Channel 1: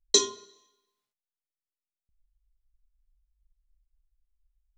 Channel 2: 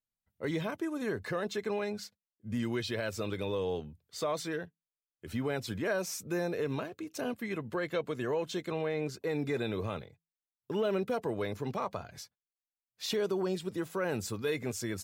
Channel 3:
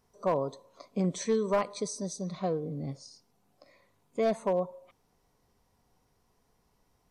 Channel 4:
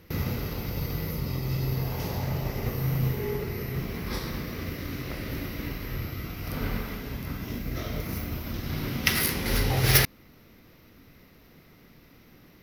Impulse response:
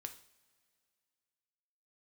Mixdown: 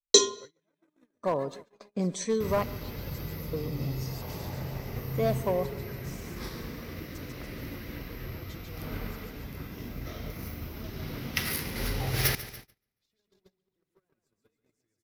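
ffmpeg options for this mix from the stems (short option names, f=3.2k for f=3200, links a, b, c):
-filter_complex "[0:a]equalizer=f=490:t=o:w=0.3:g=10.5,volume=2dB[a];[1:a]acrossover=split=220[b][c];[c]acompressor=threshold=-35dB:ratio=3[d];[b][d]amix=inputs=2:normalize=0,aphaser=in_gain=1:out_gain=1:delay=4.4:decay=0.46:speed=0.52:type=triangular,acompressor=threshold=-39dB:ratio=16,volume=-8.5dB,asplit=2[e][f];[f]volume=-3dB[g];[2:a]highshelf=f=4.6k:g=4.5,adelay=1000,volume=-0.5dB,asplit=3[h][i][j];[h]atrim=end=2.64,asetpts=PTS-STARTPTS,afade=t=out:st=2.636:d=0.004:c=hsin[k];[i]atrim=start=2.64:end=3.53,asetpts=PTS-STARTPTS,volume=0[l];[j]atrim=start=3.53,asetpts=PTS-STARTPTS,afade=t=in:d=0.004:c=hsin[m];[k][l][m]concat=n=3:v=0:a=1,asplit=2[n][o];[o]volume=-21dB[p];[3:a]adelay=2300,volume=-6.5dB,asplit=2[q][r];[r]volume=-15dB[s];[g][p][s]amix=inputs=3:normalize=0,aecho=0:1:143|286|429|572|715|858|1001|1144|1287:1|0.59|0.348|0.205|0.121|0.0715|0.0422|0.0249|0.0147[t];[a][e][n][q][t]amix=inputs=5:normalize=0,agate=range=-32dB:threshold=-44dB:ratio=16:detection=peak"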